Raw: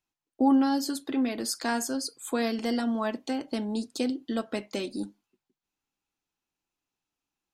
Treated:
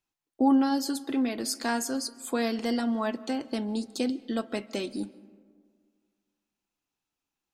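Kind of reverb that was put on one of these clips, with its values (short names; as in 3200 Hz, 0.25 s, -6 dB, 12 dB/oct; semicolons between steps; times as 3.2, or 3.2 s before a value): digital reverb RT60 1.9 s, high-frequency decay 0.4×, pre-delay 0.1 s, DRR 20 dB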